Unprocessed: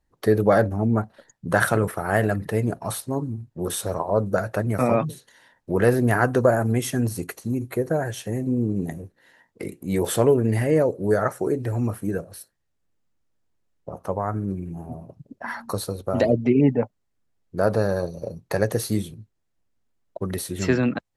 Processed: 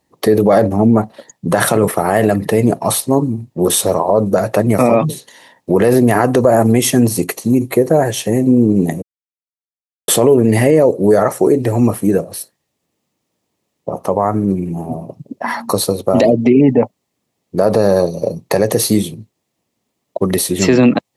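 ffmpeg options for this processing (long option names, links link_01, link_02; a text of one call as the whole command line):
ffmpeg -i in.wav -filter_complex "[0:a]asplit=3[link_01][link_02][link_03];[link_01]atrim=end=9.02,asetpts=PTS-STARTPTS,afade=type=out:start_time=9.016:duration=0.004:curve=hsin[link_04];[link_02]atrim=start=9.02:end=10.08,asetpts=PTS-STARTPTS,volume=0[link_05];[link_03]atrim=start=10.08,asetpts=PTS-STARTPTS,afade=type=in:duration=0.004:curve=hsin[link_06];[link_04][link_05][link_06]concat=n=3:v=0:a=1,highpass=160,equalizer=frequency=1500:width_type=o:width=0.37:gain=-11.5,alimiter=level_in=15.5dB:limit=-1dB:release=50:level=0:latency=1,volume=-1dB" out.wav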